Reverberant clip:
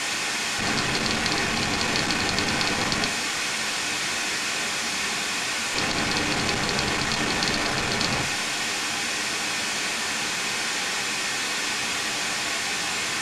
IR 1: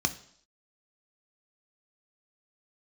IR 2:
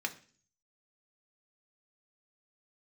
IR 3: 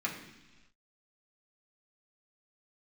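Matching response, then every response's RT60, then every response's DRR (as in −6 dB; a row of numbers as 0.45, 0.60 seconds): 2; 0.65 s, 0.45 s, non-exponential decay; 7.5, 3.5, −4.0 decibels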